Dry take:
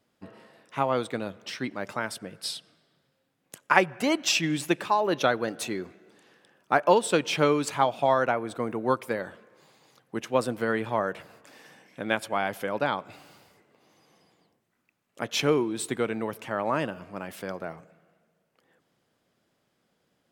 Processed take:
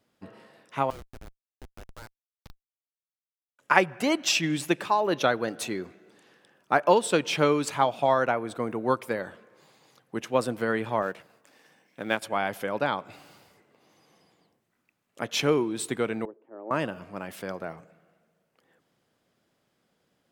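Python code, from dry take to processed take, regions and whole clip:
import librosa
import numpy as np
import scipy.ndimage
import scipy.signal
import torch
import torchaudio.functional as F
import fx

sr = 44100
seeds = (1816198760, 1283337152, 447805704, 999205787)

y = fx.chain(x, sr, fx.median_filter(points=15),
    fx.highpass(hz=930.0, slope=12),
    fx.schmitt(flips_db=-33.0), at=(0.9, 3.59))
y = fx.chain(y, sr, fx.law_mismatch(coded='A'),
    fx.highpass(hz=110.0, slope=12), at=(11.02, 12.22))
y = fx.chain(y, sr, fx.ladder_bandpass(hz=390.0, resonance_pct=60),
    fx.band_widen(depth_pct=100), at=(16.25, 16.71))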